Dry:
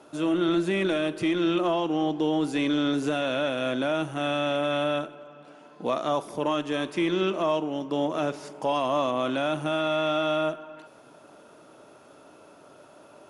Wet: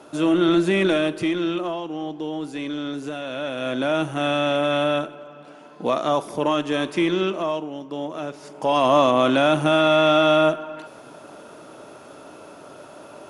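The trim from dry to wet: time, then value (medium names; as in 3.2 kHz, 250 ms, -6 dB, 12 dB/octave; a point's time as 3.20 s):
0.96 s +6 dB
1.84 s -4 dB
3.25 s -4 dB
3.95 s +5 dB
7.01 s +5 dB
7.80 s -3 dB
8.33 s -3 dB
8.86 s +9 dB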